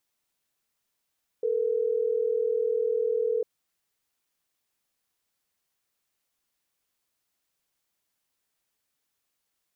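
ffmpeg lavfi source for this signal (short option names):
-f lavfi -i "aevalsrc='0.0501*(sin(2*PI*440*t)+sin(2*PI*480*t))*clip(min(mod(t,6),2-mod(t,6))/0.005,0,1)':d=3.12:s=44100"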